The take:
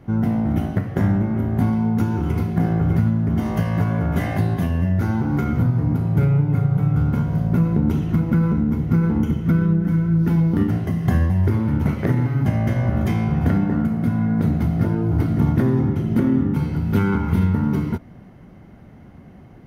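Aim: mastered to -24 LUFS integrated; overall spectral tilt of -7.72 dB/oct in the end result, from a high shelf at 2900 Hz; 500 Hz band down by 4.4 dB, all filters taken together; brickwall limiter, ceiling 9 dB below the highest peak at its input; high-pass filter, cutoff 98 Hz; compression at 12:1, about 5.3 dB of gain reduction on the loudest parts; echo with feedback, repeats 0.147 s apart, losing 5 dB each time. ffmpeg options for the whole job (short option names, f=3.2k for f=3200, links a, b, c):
-af "highpass=98,equalizer=f=500:t=o:g=-6.5,highshelf=f=2.9k:g=4.5,acompressor=threshold=-20dB:ratio=12,alimiter=limit=-20.5dB:level=0:latency=1,aecho=1:1:147|294|441|588|735|882|1029:0.562|0.315|0.176|0.0988|0.0553|0.031|0.0173,volume=4dB"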